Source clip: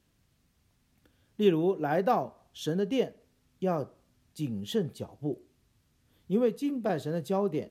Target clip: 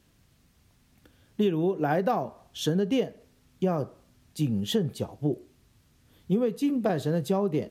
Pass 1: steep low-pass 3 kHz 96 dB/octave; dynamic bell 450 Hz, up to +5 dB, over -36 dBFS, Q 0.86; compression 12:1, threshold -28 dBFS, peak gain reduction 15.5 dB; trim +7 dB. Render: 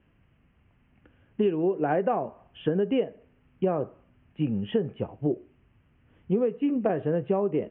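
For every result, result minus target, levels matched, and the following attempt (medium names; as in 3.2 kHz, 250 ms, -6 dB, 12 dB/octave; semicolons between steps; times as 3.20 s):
4 kHz band -9.0 dB; 125 Hz band -3.0 dB
dynamic bell 450 Hz, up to +5 dB, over -36 dBFS, Q 0.86; compression 12:1, threshold -28 dBFS, peak gain reduction 15.5 dB; trim +7 dB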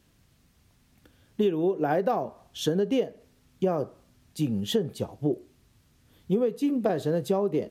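125 Hz band -3.5 dB
dynamic bell 120 Hz, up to +5 dB, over -36 dBFS, Q 0.86; compression 12:1, threshold -28 dBFS, peak gain reduction 12.5 dB; trim +7 dB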